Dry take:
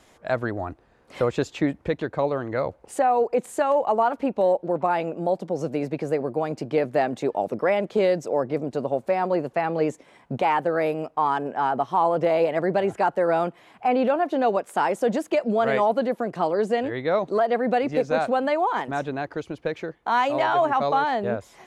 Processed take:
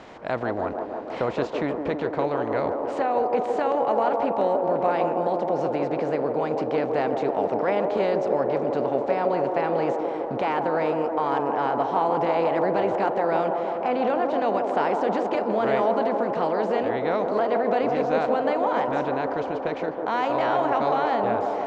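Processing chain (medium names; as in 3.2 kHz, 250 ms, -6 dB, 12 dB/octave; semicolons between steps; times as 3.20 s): spectral levelling over time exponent 0.6; low-pass 5.8 kHz 24 dB/octave; on a send: feedback echo behind a band-pass 161 ms, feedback 79%, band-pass 540 Hz, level -3.5 dB; on the sum: trim -7 dB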